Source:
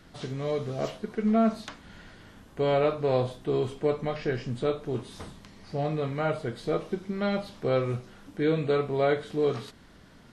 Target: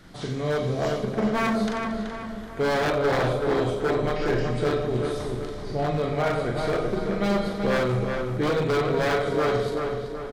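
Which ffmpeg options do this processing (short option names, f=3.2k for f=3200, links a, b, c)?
-filter_complex "[0:a]asubboost=boost=4:cutoff=59,asplit=2[a][b];[b]aecho=0:1:40|90|152.5|230.6|328.3:0.631|0.398|0.251|0.158|0.1[c];[a][c]amix=inputs=2:normalize=0,aeval=exprs='0.0794*(abs(mod(val(0)/0.0794+3,4)-2)-1)':c=same,equalizer=f=2.7k:w=7:g=-5,asplit=2[d][e];[e]adelay=379,lowpass=f=2.9k:p=1,volume=-4.5dB,asplit=2[f][g];[g]adelay=379,lowpass=f=2.9k:p=1,volume=0.48,asplit=2[h][i];[i]adelay=379,lowpass=f=2.9k:p=1,volume=0.48,asplit=2[j][k];[k]adelay=379,lowpass=f=2.9k:p=1,volume=0.48,asplit=2[l][m];[m]adelay=379,lowpass=f=2.9k:p=1,volume=0.48,asplit=2[n][o];[o]adelay=379,lowpass=f=2.9k:p=1,volume=0.48[p];[f][h][j][l][n][p]amix=inputs=6:normalize=0[q];[d][q]amix=inputs=2:normalize=0,volume=3.5dB"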